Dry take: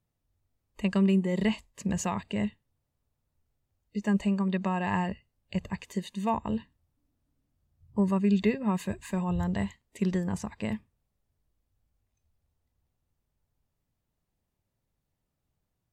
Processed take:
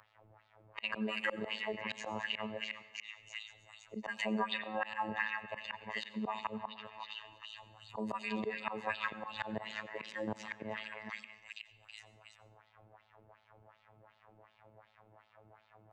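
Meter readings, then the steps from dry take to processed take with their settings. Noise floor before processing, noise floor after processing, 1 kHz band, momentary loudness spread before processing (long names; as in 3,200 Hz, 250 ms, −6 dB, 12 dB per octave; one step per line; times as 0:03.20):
−82 dBFS, −71 dBFS, −4.0 dB, 11 LU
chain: delay that plays each chunk backwards 176 ms, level −14 dB
low-pass that shuts in the quiet parts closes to 1,500 Hz, open at −22 dBFS
drawn EQ curve 110 Hz 0 dB, 260 Hz −16 dB, 630 Hz 0 dB
on a send: echo through a band-pass that steps 323 ms, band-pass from 1,700 Hz, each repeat 0.7 octaves, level −5.5 dB
on the sum: auto-filter band-pass sine 2.7 Hz 280–3,900 Hz
phases set to zero 108 Hz
volume swells 293 ms
dense smooth reverb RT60 0.66 s, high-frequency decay 0.75×, pre-delay 75 ms, DRR 16 dB
multiband upward and downward compressor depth 70%
level +18 dB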